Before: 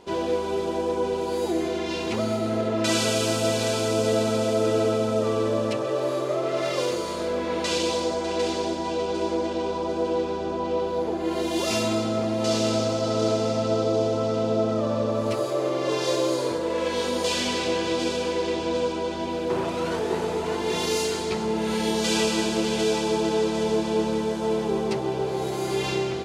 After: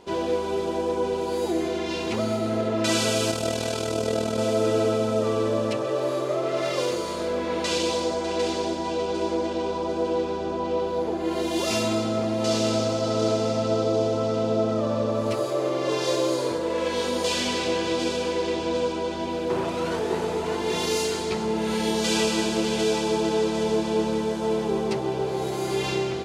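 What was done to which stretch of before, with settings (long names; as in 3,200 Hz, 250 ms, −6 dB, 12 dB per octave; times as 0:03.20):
0:03.31–0:04.38: amplitude modulation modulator 40 Hz, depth 50%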